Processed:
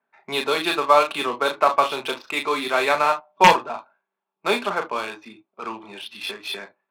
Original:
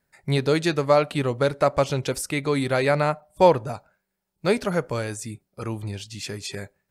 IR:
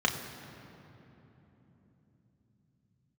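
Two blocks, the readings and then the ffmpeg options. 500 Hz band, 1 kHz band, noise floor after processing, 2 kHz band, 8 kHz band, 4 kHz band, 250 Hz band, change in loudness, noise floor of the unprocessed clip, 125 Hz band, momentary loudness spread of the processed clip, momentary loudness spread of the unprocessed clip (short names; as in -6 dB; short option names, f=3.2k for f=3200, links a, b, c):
-2.0 dB, +7.5 dB, -84 dBFS, +6.0 dB, -2.0 dB, +7.0 dB, -5.5 dB, +2.5 dB, -80 dBFS, -15.0 dB, 18 LU, 15 LU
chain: -filter_complex "[0:a]highpass=f=330:w=0.5412,highpass=f=330:w=1.3066,equalizer=f=430:t=q:w=4:g=-9,equalizer=f=620:t=q:w=4:g=-5,equalizer=f=1.1k:t=q:w=4:g=6,equalizer=f=1.9k:t=q:w=4:g=-8,equalizer=f=3.7k:t=q:w=4:g=8,lowpass=f=4.3k:w=0.5412,lowpass=f=4.3k:w=1.3066,aeval=exprs='(mod(2.24*val(0)+1,2)-1)/2.24':c=same[a];[1:a]atrim=start_sample=2205,atrim=end_sample=3087,asetrate=38367,aresample=44100[b];[a][b]afir=irnorm=-1:irlink=0,adynamicsmooth=sensitivity=4:basefreq=1.8k,volume=-5dB"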